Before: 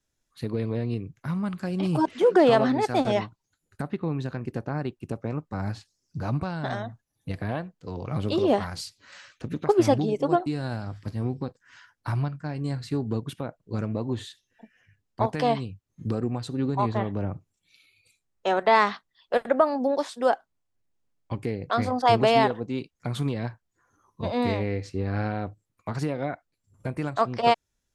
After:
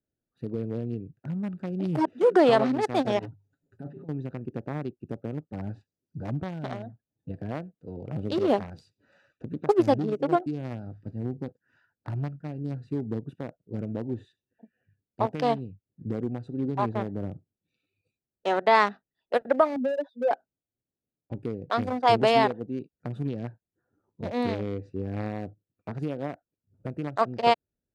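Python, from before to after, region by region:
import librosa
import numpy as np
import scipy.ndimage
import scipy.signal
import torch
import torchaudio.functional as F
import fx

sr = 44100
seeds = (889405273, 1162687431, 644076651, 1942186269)

y = fx.chain(x, sr, fx.over_compress(threshold_db=-34.0, ratio=-0.5),
    fx.hum_notches(base_hz=50, count=3),
    fx.comb(ms=7.3, depth=0.78), at=(3.19, 4.09))
y = fx.chain(y, sr, fx.spec_expand(power=3.1),
    fx.lowpass(hz=3700.0, slope=12),
    fx.band_squash(depth_pct=40), at=(19.76, 20.31))
y = fx.wiener(y, sr, points=41)
y = fx.highpass(y, sr, hz=160.0, slope=6)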